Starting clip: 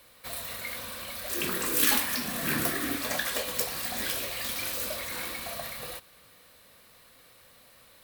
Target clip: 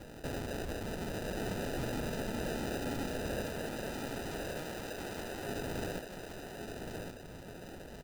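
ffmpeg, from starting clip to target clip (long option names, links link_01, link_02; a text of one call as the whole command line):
ffmpeg -i in.wav -filter_complex "[0:a]aecho=1:1:4.6:0.34,acrusher=samples=40:mix=1:aa=0.000001,asettb=1/sr,asplit=3[link_01][link_02][link_03];[link_01]atrim=end=3.474[link_04];[link_02]atrim=start=3.47:end=5.48,asetpts=PTS-STARTPTS,afade=type=in:duration=0.004:curve=qsin,afade=type=out:start_time=2.006:duration=0.004:curve=qsin,lowshelf=frequency=260:gain=-9.5[link_05];[link_03]atrim=start=5.476[link_06];[link_04][link_05]acrossfade=duration=0.004:curve1=hsin:curve2=qsin[link_07];[link_07][link_06]acrossfade=duration=0.004:curve1=qsin:curve2=hsin,alimiter=level_in=15.5dB:limit=-24dB:level=0:latency=1:release=110,volume=-15.5dB,aecho=1:1:1121:0.562,volume=7.5dB" out.wav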